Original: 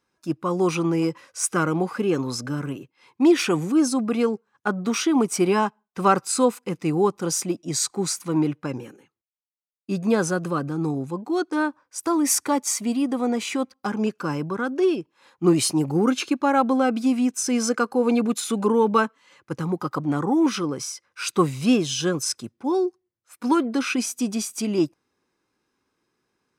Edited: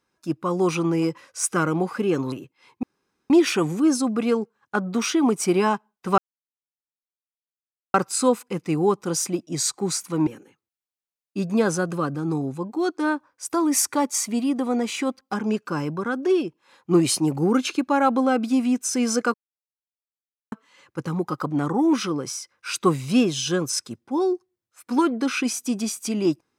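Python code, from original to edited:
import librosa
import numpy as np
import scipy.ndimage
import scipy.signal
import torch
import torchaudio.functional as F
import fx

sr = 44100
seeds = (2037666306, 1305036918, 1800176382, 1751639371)

y = fx.edit(x, sr, fx.cut(start_s=2.32, length_s=0.39),
    fx.insert_room_tone(at_s=3.22, length_s=0.47),
    fx.insert_silence(at_s=6.1, length_s=1.76),
    fx.cut(start_s=8.43, length_s=0.37),
    fx.silence(start_s=17.87, length_s=1.18), tone=tone)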